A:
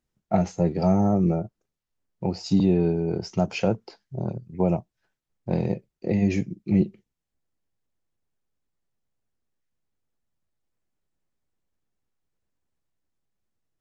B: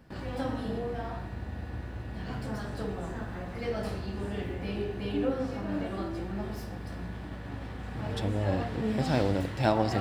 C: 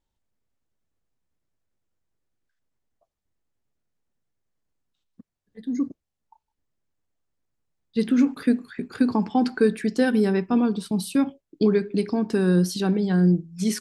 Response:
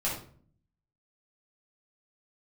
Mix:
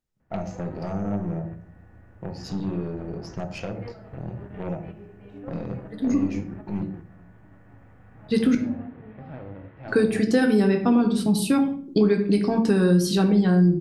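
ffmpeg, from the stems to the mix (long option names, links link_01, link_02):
-filter_complex "[0:a]volume=-10.5dB,asplit=3[link_01][link_02][link_03];[link_02]volume=-9dB[link_04];[1:a]lowpass=frequency=2300:width=0.5412,lowpass=frequency=2300:width=1.3066,adelay=200,volume=-9dB,asplit=2[link_05][link_06];[link_06]volume=-18dB[link_07];[2:a]adelay=350,volume=2dB,asplit=3[link_08][link_09][link_10];[link_08]atrim=end=8.55,asetpts=PTS-STARTPTS,afade=type=out:start_time=8.546:duration=0.004:curve=hsin[link_11];[link_09]atrim=start=8.55:end=9.88,asetpts=PTS-STARTPTS,volume=0[link_12];[link_10]atrim=start=9.88,asetpts=PTS-STARTPTS,afade=type=in:duration=0.004:curve=hsin[link_13];[link_11][link_12][link_13]concat=n=3:v=0:a=1,asplit=2[link_14][link_15];[link_15]volume=-7.5dB[link_16];[link_03]apad=whole_len=450234[link_17];[link_05][link_17]sidechaingate=range=-10dB:threshold=-51dB:ratio=16:detection=peak[link_18];[link_01][link_18]amix=inputs=2:normalize=0,aeval=exprs='0.133*(cos(1*acos(clip(val(0)/0.133,-1,1)))-cos(1*PI/2))+0.0168*(cos(5*acos(clip(val(0)/0.133,-1,1)))-cos(5*PI/2))+0.0237*(cos(8*acos(clip(val(0)/0.133,-1,1)))-cos(8*PI/2))':channel_layout=same,acompressor=threshold=-36dB:ratio=2,volume=0dB[link_19];[3:a]atrim=start_sample=2205[link_20];[link_04][link_07][link_16]amix=inputs=3:normalize=0[link_21];[link_21][link_20]afir=irnorm=-1:irlink=0[link_22];[link_14][link_19][link_22]amix=inputs=3:normalize=0,acompressor=threshold=-18dB:ratio=2"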